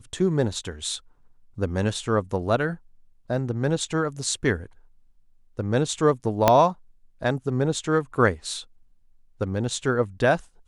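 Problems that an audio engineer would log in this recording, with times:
0:06.48: click −2 dBFS

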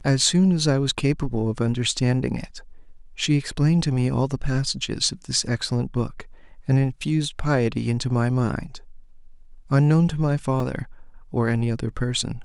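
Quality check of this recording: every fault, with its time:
0:10.60: drop-out 2.5 ms

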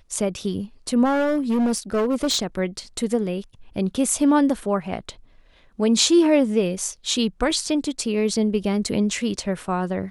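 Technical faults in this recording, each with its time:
0:01.04–0:02.44: clipping −17 dBFS

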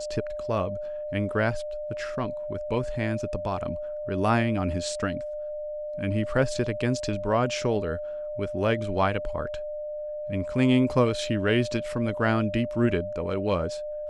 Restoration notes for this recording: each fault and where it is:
whistle 600 Hz −31 dBFS

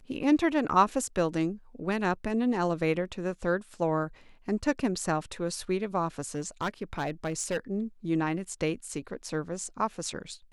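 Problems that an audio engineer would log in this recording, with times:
0:06.35–0:07.57: clipping −25 dBFS

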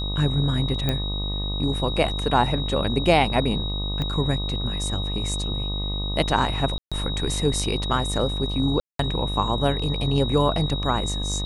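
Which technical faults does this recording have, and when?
mains buzz 50 Hz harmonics 25 −28 dBFS
whistle 3,800 Hz −30 dBFS
0:00.89: click −10 dBFS
0:04.02: click −16 dBFS
0:06.78–0:06.92: drop-out 136 ms
0:08.80–0:08.99: drop-out 193 ms

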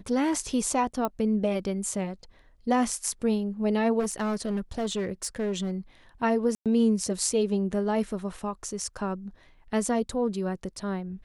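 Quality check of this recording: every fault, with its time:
0:01.05: click −15 dBFS
0:03.99–0:05.71: clipping −24 dBFS
0:06.55–0:06.66: drop-out 107 ms

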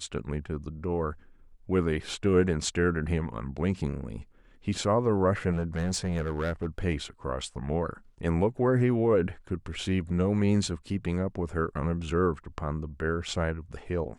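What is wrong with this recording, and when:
0:05.51–0:06.85: clipping −24 dBFS

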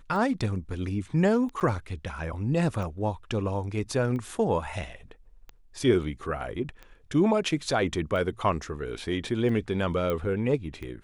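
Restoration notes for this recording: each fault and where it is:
scratch tick 45 rpm
0:01.60–0:01.61: drop-out 8.2 ms
0:10.10: click −17 dBFS

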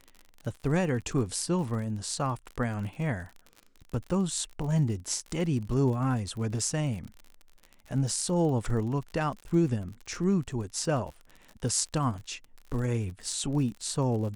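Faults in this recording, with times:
surface crackle 49 per second −37 dBFS

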